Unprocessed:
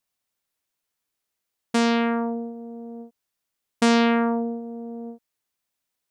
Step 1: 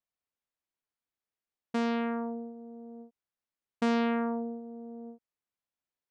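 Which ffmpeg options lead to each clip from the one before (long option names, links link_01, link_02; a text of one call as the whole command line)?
ffmpeg -i in.wav -af "aemphasis=mode=reproduction:type=75kf,volume=-8.5dB" out.wav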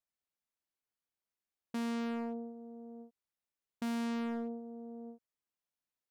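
ffmpeg -i in.wav -af "volume=30.5dB,asoftclip=hard,volume=-30.5dB,volume=-3dB" out.wav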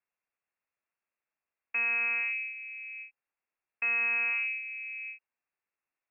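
ffmpeg -i in.wav -af "lowpass=frequency=2400:width_type=q:width=0.5098,lowpass=frequency=2400:width_type=q:width=0.6013,lowpass=frequency=2400:width_type=q:width=0.9,lowpass=frequency=2400:width_type=q:width=2.563,afreqshift=-2800,volume=6.5dB" out.wav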